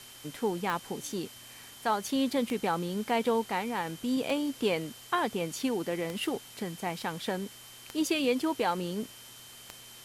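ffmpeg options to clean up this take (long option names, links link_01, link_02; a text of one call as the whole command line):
ffmpeg -i in.wav -af "adeclick=threshold=4,bandreject=frequency=120.9:width_type=h:width=4,bandreject=frequency=241.8:width_type=h:width=4,bandreject=frequency=362.7:width_type=h:width=4,bandreject=frequency=3100:width=30,afwtdn=0.0035" out.wav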